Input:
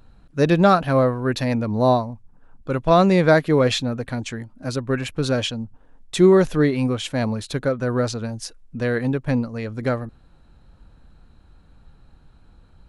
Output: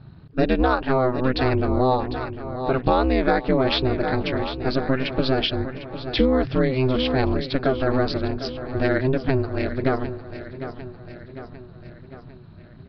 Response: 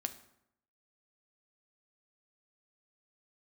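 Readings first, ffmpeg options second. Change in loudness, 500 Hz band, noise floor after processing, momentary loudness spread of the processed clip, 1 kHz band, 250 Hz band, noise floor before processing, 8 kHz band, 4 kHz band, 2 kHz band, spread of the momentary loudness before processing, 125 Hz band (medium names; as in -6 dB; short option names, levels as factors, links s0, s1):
-2.0 dB, -2.0 dB, -44 dBFS, 15 LU, -1.0 dB, -1.5 dB, -52 dBFS, under -20 dB, +1.5 dB, -0.5 dB, 16 LU, -2.5 dB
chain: -af "aeval=exprs='val(0)*sin(2*PI*130*n/s)':c=same,aresample=11025,aresample=44100,aecho=1:1:751|1502|2253|3004|3755:0.188|0.104|0.057|0.0313|0.0172,acompressor=threshold=0.0794:ratio=5,volume=2.11"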